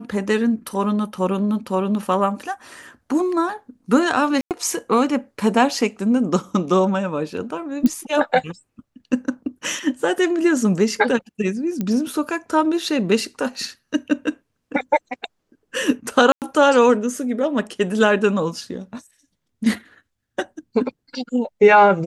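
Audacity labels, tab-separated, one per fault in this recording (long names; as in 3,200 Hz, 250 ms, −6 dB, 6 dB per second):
4.410000	4.510000	drop-out 98 ms
7.860000	7.860000	click −8 dBFS
11.810000	11.810000	click −12 dBFS
16.320000	16.420000	drop-out 98 ms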